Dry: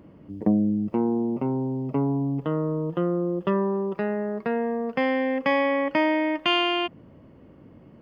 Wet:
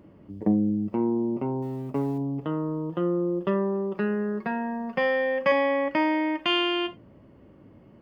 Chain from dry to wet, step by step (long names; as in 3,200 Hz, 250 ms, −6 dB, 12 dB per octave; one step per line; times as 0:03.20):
0:01.62–0:02.18: mu-law and A-law mismatch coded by A
0:03.96–0:05.52: comb filter 5.5 ms, depth 76%
reverb whose tail is shaped and stops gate 110 ms falling, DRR 8.5 dB
level −2.5 dB